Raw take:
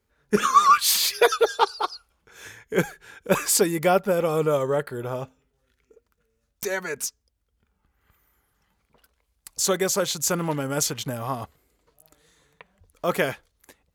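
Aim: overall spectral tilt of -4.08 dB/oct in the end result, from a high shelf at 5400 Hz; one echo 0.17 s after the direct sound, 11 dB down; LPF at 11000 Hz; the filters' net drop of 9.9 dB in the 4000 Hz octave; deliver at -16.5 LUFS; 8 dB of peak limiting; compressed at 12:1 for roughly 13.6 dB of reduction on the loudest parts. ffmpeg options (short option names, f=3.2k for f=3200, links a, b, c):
-af "lowpass=11k,equalizer=f=4k:t=o:g=-8.5,highshelf=f=5.4k:g=-8.5,acompressor=threshold=-26dB:ratio=12,alimiter=limit=-23dB:level=0:latency=1,aecho=1:1:170:0.282,volume=17.5dB"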